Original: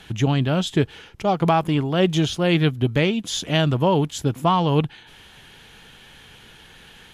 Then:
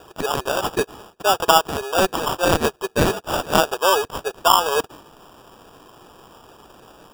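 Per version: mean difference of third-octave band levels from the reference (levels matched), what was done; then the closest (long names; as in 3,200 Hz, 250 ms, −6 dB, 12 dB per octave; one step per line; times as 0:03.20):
11.0 dB: elliptic high-pass filter 400 Hz
dynamic equaliser 2,100 Hz, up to +8 dB, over −38 dBFS, Q 0.71
decimation without filtering 21×
level +2 dB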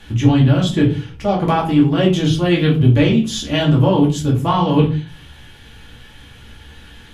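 5.5 dB: parametric band 64 Hz +11.5 dB 1.5 octaves
flanger 0.98 Hz, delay 5.4 ms, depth 9.3 ms, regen −74%
rectangular room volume 190 cubic metres, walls furnished, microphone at 2.4 metres
level +2 dB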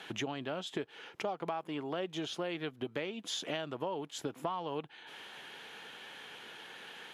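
7.5 dB: high-pass filter 370 Hz 12 dB per octave
high-shelf EQ 4,000 Hz −9.5 dB
downward compressor 6 to 1, threshold −36 dBFS, peak gain reduction 19 dB
level +1 dB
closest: second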